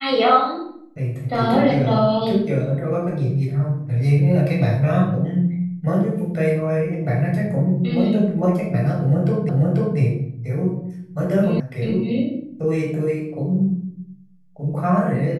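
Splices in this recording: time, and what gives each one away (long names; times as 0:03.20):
0:09.49: the same again, the last 0.49 s
0:11.60: cut off before it has died away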